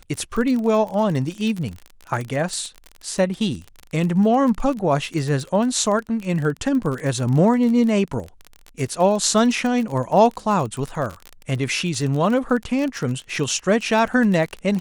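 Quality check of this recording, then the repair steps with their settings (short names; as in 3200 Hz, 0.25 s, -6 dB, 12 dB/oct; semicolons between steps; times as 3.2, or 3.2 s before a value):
crackle 32/s -25 dBFS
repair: de-click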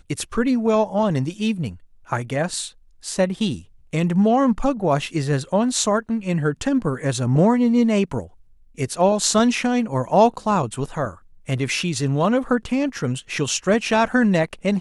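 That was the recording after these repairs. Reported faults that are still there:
none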